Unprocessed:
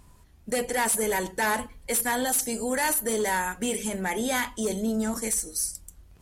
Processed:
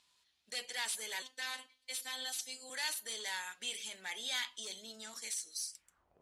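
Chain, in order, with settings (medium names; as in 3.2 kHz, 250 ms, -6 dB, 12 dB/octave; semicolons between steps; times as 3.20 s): 1.22–2.70 s: robot voice 258 Hz; band-pass sweep 3.8 kHz -> 540 Hz, 5.68–6.18 s; trim +1 dB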